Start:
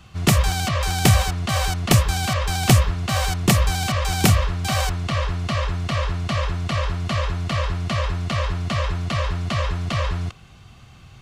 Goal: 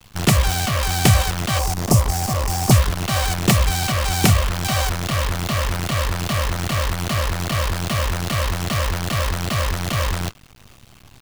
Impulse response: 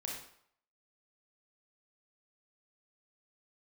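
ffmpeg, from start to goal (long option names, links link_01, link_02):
-filter_complex "[0:a]asettb=1/sr,asplit=3[link_01][link_02][link_03];[link_01]atrim=end=1.594[link_04];[link_02]atrim=start=1.59:end=2.71,asetpts=PTS-STARTPTS,afade=type=in:duration=0.004:curve=qsin,afade=type=out:start_time=1.116:duration=0.004:curve=qsin,asuperstop=centerf=2400:order=12:qfactor=0.66[link_05];[link_03]atrim=start=2.706[link_06];[link_04][link_05]acrossfade=duration=0.004:curve1=hsin:curve2=qsin[link_07];[link_07][link_06]acrossfade=duration=0.004:curve1=qsin:curve2=hsin,acrusher=bits=5:dc=4:mix=0:aa=0.000001,volume=1dB"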